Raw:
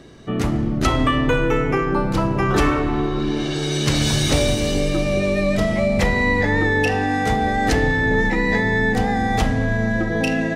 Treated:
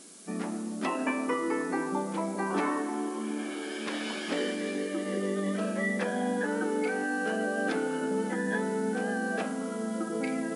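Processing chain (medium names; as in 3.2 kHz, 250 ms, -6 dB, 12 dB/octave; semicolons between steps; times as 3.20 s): tone controls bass -4 dB, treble -12 dB; formant shift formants -3 st; added noise violet -34 dBFS; FFT band-pass 170–11000 Hz; trim -9 dB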